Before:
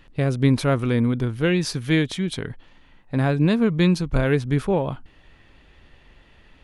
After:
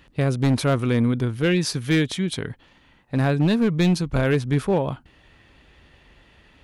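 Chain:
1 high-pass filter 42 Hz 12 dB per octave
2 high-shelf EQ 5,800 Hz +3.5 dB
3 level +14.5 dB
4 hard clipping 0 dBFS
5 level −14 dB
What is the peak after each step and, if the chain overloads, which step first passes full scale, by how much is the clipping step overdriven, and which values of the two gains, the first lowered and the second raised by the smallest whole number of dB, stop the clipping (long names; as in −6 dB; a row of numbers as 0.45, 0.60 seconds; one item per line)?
−7.5, −7.5, +7.0, 0.0, −14.0 dBFS
step 3, 7.0 dB
step 3 +7.5 dB, step 5 −7 dB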